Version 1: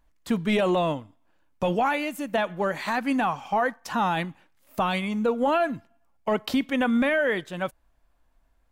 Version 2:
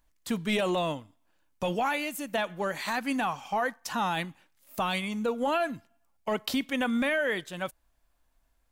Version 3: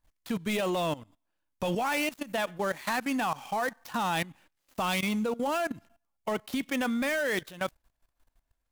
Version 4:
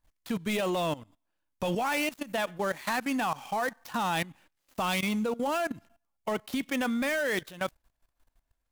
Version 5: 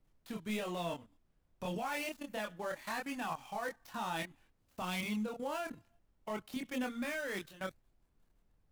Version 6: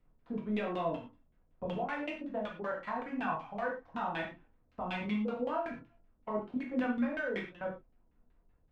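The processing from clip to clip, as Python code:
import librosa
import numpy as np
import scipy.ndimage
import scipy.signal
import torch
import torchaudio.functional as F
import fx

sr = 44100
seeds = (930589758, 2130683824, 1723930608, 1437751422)

y1 = fx.high_shelf(x, sr, hz=3000.0, db=10.0)
y1 = y1 * librosa.db_to_amplitude(-5.5)
y2 = fx.dead_time(y1, sr, dead_ms=0.057)
y2 = fx.level_steps(y2, sr, step_db=17)
y2 = y2 * librosa.db_to_amplitude(5.5)
y3 = y2
y4 = fx.chorus_voices(y3, sr, voices=2, hz=0.3, base_ms=26, depth_ms=2.3, mix_pct=45)
y4 = fx.dmg_noise_colour(y4, sr, seeds[0], colour='brown', level_db=-66.0)
y4 = y4 * librosa.db_to_amplitude(-6.0)
y5 = fx.filter_lfo_lowpass(y4, sr, shape='saw_down', hz=5.3, low_hz=320.0, high_hz=2900.0, q=1.4)
y5 = fx.rev_gated(y5, sr, seeds[1], gate_ms=140, shape='falling', drr_db=-0.5)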